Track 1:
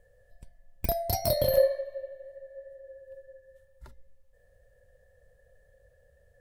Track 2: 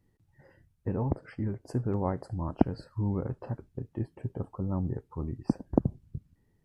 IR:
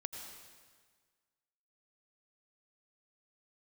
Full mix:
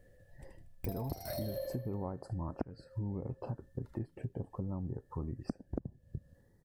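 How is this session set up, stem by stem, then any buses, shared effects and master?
-1.5 dB, 0.00 s, no send, echo send -10.5 dB, auto duck -8 dB, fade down 1.20 s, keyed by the second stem
+2.5 dB, 0.00 s, no send, no echo send, LFO notch saw up 0.74 Hz 870–3400 Hz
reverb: off
echo: feedback echo 78 ms, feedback 52%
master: compressor 8:1, threshold -35 dBFS, peak gain reduction 22 dB

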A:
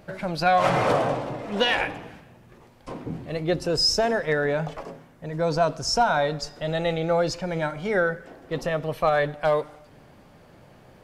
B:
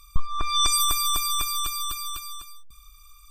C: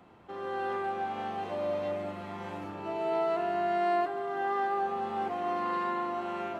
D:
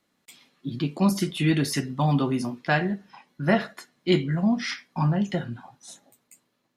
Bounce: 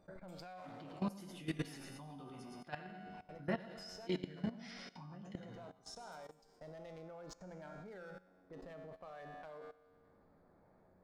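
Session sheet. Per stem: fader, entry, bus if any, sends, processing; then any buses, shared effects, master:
+0.5 dB, 0.00 s, no send, no echo send, Wiener smoothing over 15 samples; compressor 2.5:1, threshold -28 dBFS, peak gain reduction 8.5 dB; bell 120 Hz -10.5 dB 0.39 oct; auto duck -8 dB, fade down 1.35 s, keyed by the fourth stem
-13.0 dB, 0.00 s, no send, no echo send, steep low-pass 7900 Hz; compressor 6:1, threshold -28 dBFS, peak gain reduction 14.5 dB; dB-linear tremolo 0.6 Hz, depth 33 dB
-14.0 dB, 1.25 s, no send, no echo send, compressor 3:1, threshold -31 dBFS, peak gain reduction 5.5 dB; ensemble effect
-2.5 dB, 0.00 s, no send, echo send -5 dB, dry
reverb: off
echo: feedback echo 0.11 s, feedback 39%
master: resonator 92 Hz, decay 1.5 s, harmonics all, mix 80%; level quantiser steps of 17 dB

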